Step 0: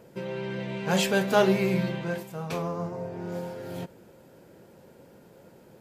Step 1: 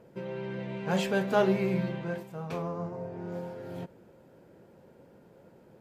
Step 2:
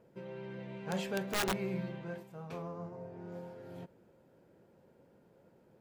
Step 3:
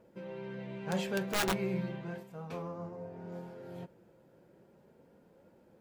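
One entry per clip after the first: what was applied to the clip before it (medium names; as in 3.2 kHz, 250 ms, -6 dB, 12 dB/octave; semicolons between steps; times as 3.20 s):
treble shelf 3.2 kHz -10 dB; trim -3 dB
integer overflow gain 18 dB; trim -8 dB
flange 0.36 Hz, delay 3.4 ms, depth 2.8 ms, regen -58%; trim +6 dB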